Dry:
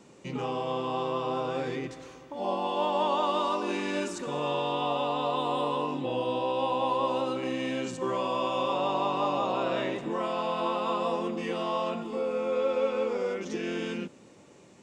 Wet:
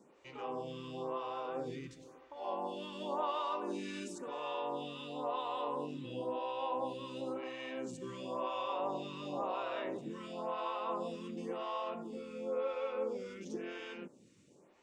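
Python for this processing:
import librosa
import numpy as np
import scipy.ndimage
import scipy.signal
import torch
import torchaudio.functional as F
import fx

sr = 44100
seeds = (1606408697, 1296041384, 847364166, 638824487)

y = fx.highpass(x, sr, hz=150.0, slope=12, at=(4.32, 5.36))
y = fx.stagger_phaser(y, sr, hz=0.96)
y = F.gain(torch.from_numpy(y), -7.0).numpy()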